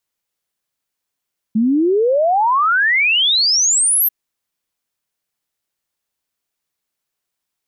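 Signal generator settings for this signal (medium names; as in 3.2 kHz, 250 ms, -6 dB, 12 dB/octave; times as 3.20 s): log sweep 210 Hz -> 13 kHz 2.54 s -11.5 dBFS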